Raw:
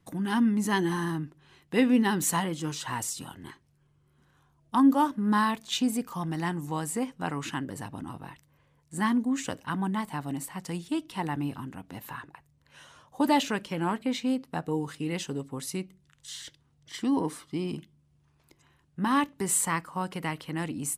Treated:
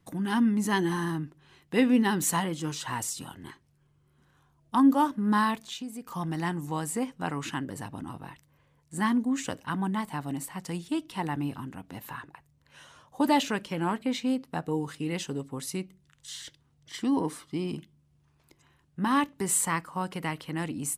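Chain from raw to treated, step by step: 5.62–6.07 s: compression 2.5:1, threshold -41 dBFS, peak gain reduction 12.5 dB

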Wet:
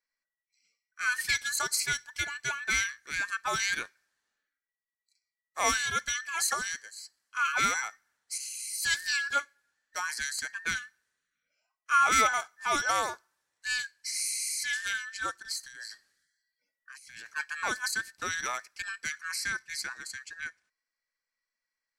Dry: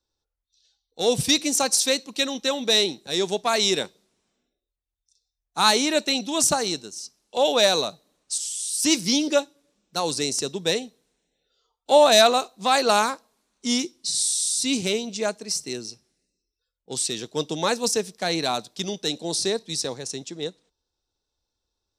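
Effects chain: every band turned upside down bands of 2 kHz; 15.63–17.36 s: compressor with a negative ratio -39 dBFS, ratio -1; trim -8.5 dB

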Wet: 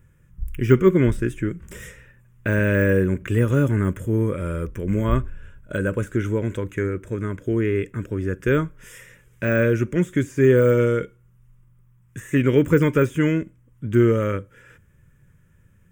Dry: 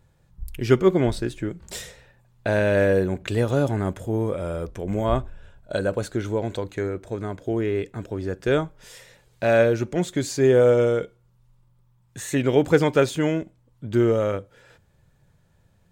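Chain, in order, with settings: de-esser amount 95%; static phaser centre 1.8 kHz, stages 4; trim +5.5 dB

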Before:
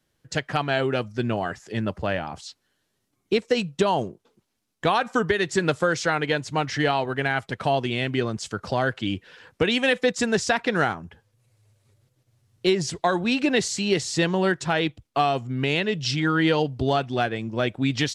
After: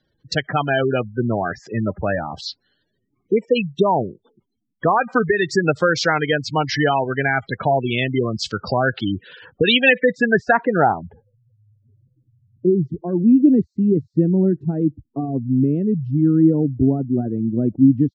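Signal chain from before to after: spectral gate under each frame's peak -15 dB strong; low-pass sweep 4.5 kHz -> 270 Hz, 9.49–11.86 s; trim +5 dB

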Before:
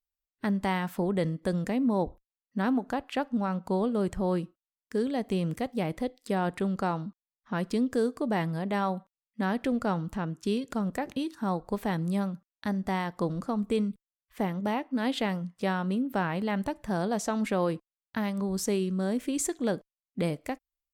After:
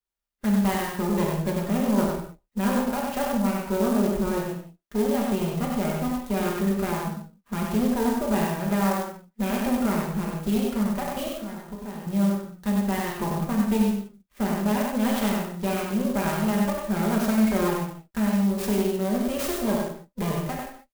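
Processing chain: comb filter that takes the minimum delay 5 ms; 11.36–12.07 s: compression 4:1, threshold -39 dBFS, peak gain reduction 12.5 dB; delay 96 ms -3.5 dB; reverberation, pre-delay 3 ms, DRR -0.5 dB; sampling jitter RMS 0.046 ms

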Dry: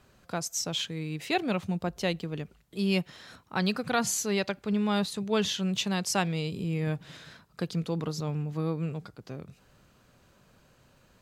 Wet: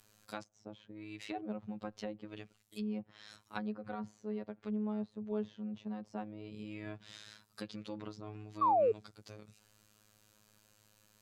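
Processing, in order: robot voice 106 Hz; pre-emphasis filter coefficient 0.8; low-pass that closes with the level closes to 680 Hz, closed at -40.5 dBFS; painted sound fall, 8.61–8.92 s, 420–1200 Hz -33 dBFS; trim +5.5 dB

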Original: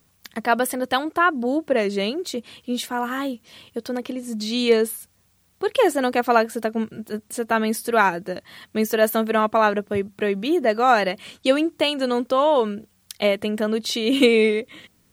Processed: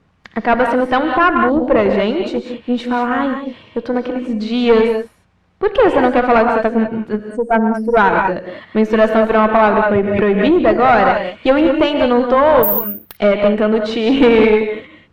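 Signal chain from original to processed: 7.29–7.97 s: spectral contrast enhancement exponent 2.8; gated-style reverb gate 220 ms rising, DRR 5 dB; valve stage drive 14 dB, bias 0.5; low-pass 2.1 kHz 12 dB/octave; 12.63–13.17 s: careless resampling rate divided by 3×, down none, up zero stuff; loudness maximiser +11.5 dB; 9.83–10.59 s: swell ahead of each attack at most 33 dB/s; trim -1 dB

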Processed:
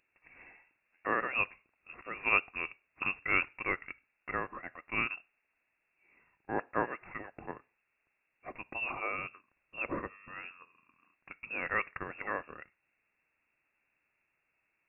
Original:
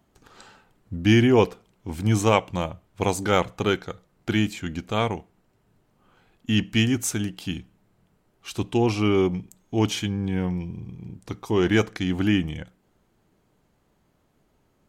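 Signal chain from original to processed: steep high-pass 760 Hz 96 dB/octave; frequency inversion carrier 3.5 kHz; trim -4 dB

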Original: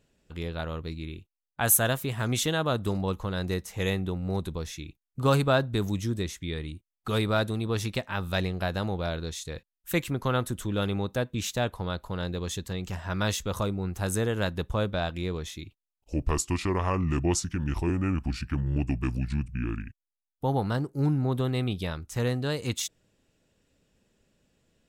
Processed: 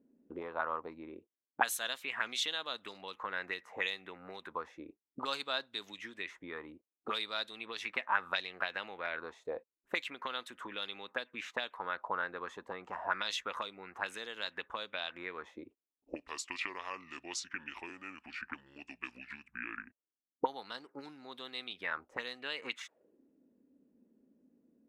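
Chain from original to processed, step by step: auto-wah 250–4000 Hz, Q 3, up, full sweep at -23.5 dBFS; graphic EQ 125/250/500/1000/2000/4000 Hz -8/+9/+6/+6/+6/-3 dB; trim +1 dB

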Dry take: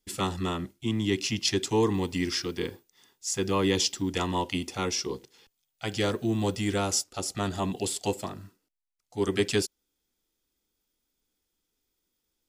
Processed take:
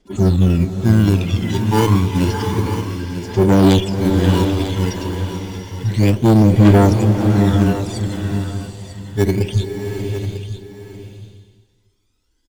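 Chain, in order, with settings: harmonic-percussive separation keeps harmonic; low-pass 8.1 kHz 12 dB/octave; in parallel at -7 dB: sample-and-hold 34×; on the sum: phaser 0.3 Hz, delay 1.1 ms, feedback 71%; Chebyshev shaper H 5 -13 dB, 8 -18 dB, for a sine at -5.5 dBFS; on a send: delay 946 ms -11 dB; on the sum: swelling reverb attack 720 ms, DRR 5 dB; trim +3 dB

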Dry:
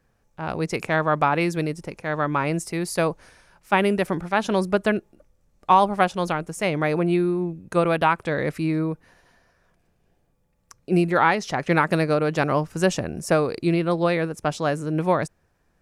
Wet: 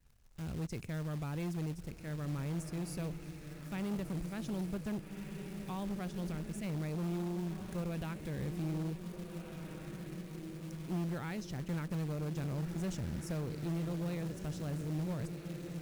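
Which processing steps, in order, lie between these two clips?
bass shelf 370 Hz +4.5 dB; echo that smears into a reverb 1624 ms, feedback 56%, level -10 dB; in parallel at -1 dB: peak limiter -13.5 dBFS, peak gain reduction 10.5 dB; on the sum: amplifier tone stack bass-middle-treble 10-0-1; valve stage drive 32 dB, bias 0.25; short-mantissa float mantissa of 2-bit; vibrato 0.79 Hz 21 cents; tape noise reduction on one side only encoder only

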